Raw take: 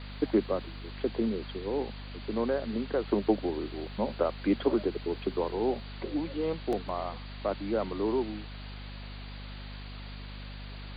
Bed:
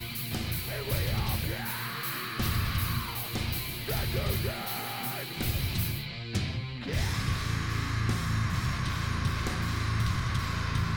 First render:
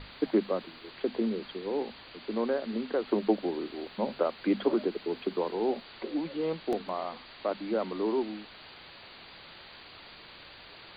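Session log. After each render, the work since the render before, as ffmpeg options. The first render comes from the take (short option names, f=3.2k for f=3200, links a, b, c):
-af "bandreject=f=50:t=h:w=6,bandreject=f=100:t=h:w=6,bandreject=f=150:t=h:w=6,bandreject=f=200:t=h:w=6,bandreject=f=250:t=h:w=6"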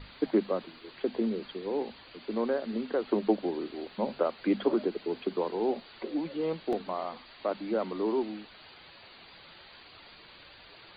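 -af "afftdn=nr=6:nf=-50"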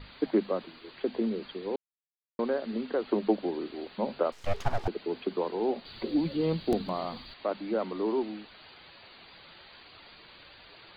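-filter_complex "[0:a]asettb=1/sr,asplit=3[a][b][c];[a]atrim=end=4.324[d];[b]atrim=start=4.32:end=4.88,asetpts=PTS-STARTPTS,afade=t=in:d=0.004:c=qsin,afade=t=out:st=0.556:d=0.004:c=qsin,aeval=exprs='abs(val(0))':c=same[e];[c]atrim=start=4.876[f];[d][e]acrossfade=d=0.004:c1=hsin:c2=qsin[g];[g][f]acrossfade=d=0.004:c1=qsin:c2=hsin,asettb=1/sr,asplit=3[h][i][j];[h]atrim=end=5.854[k];[i]atrim=start=5.85:end=7.34,asetpts=PTS-STARTPTS,afade=t=in:d=0.004:c=qsin,afade=t=out:st=1.486:d=0.004:c=qsin,bass=f=250:g=14,treble=f=4k:g=13[l];[j]atrim=start=7.336[m];[k][l]acrossfade=d=0.004:c1=hsin:c2=qsin[n];[n][m]acrossfade=d=0.004:c1=qsin:c2=hsin,asplit=3[o][p][q];[o]atrim=end=1.76,asetpts=PTS-STARTPTS,afade=t=out:st=1.756:d=0.004:c=hsin[r];[p]atrim=start=1.76:end=2.39,asetpts=PTS-STARTPTS,volume=0[s];[q]atrim=start=2.39,asetpts=PTS-STARTPTS,afade=t=in:d=0.004:c=hsin[t];[r][s][t]concat=n=3:v=0:a=1"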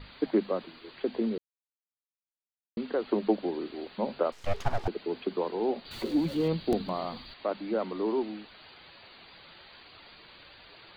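-filter_complex "[0:a]asettb=1/sr,asplit=3[a][b][c];[a]atrim=end=5.914[d];[b]atrim=start=5.91:end=6.48,asetpts=PTS-STARTPTS,afade=t=in:d=0.004:c=qsin,afade=t=out:st=0.566:d=0.004:c=qsin,aeval=exprs='val(0)+0.5*0.00794*sgn(val(0))':c=same[e];[c]atrim=start=6.476[f];[d][e]acrossfade=d=0.004:c1=hsin:c2=qsin[g];[g][f]acrossfade=d=0.004:c1=qsin:c2=hsin,asplit=3[h][i][j];[h]atrim=end=1.38,asetpts=PTS-STARTPTS,afade=t=out:st=1.376:d=0.004:c=hsin[k];[i]atrim=start=1.38:end=2.77,asetpts=PTS-STARTPTS,volume=0[l];[j]atrim=start=2.77,asetpts=PTS-STARTPTS,afade=t=in:d=0.004:c=hsin[m];[k][l][m]concat=n=3:v=0:a=1"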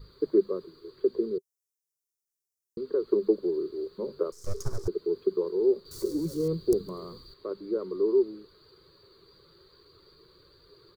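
-af "firequalizer=gain_entry='entry(160,0);entry(240,-13);entry(390,9);entry(730,-24);entry(1100,-6);entry(1900,-19);entry(2800,-24);entry(5400,9)':delay=0.05:min_phase=1"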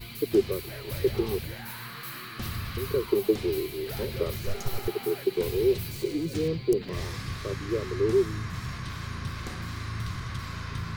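-filter_complex "[1:a]volume=-5dB[a];[0:a][a]amix=inputs=2:normalize=0"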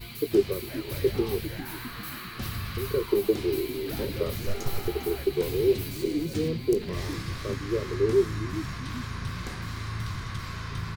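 -filter_complex "[0:a]asplit=2[a][b];[b]adelay=20,volume=-11dB[c];[a][c]amix=inputs=2:normalize=0,asplit=7[d][e][f][g][h][i][j];[e]adelay=401,afreqshift=-73,volume=-13.5dB[k];[f]adelay=802,afreqshift=-146,volume=-18.2dB[l];[g]adelay=1203,afreqshift=-219,volume=-23dB[m];[h]adelay=1604,afreqshift=-292,volume=-27.7dB[n];[i]adelay=2005,afreqshift=-365,volume=-32.4dB[o];[j]adelay=2406,afreqshift=-438,volume=-37.2dB[p];[d][k][l][m][n][o][p]amix=inputs=7:normalize=0"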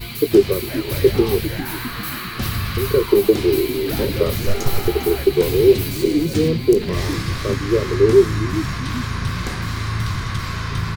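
-af "volume=10.5dB,alimiter=limit=-2dB:level=0:latency=1"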